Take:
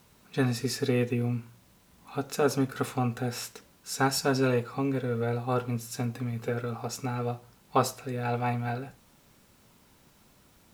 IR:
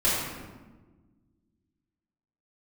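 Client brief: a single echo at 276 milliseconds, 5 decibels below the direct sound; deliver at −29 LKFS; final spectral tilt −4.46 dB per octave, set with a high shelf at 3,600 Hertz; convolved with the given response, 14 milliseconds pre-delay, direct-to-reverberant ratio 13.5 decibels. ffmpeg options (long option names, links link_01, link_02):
-filter_complex "[0:a]highshelf=frequency=3600:gain=7,aecho=1:1:276:0.562,asplit=2[link_01][link_02];[1:a]atrim=start_sample=2205,adelay=14[link_03];[link_02][link_03]afir=irnorm=-1:irlink=0,volume=-27.5dB[link_04];[link_01][link_04]amix=inputs=2:normalize=0,volume=-1dB"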